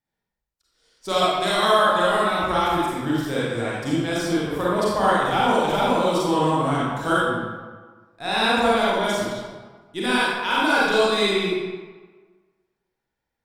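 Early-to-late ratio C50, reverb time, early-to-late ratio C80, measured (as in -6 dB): -4.0 dB, 1.4 s, -0.5 dB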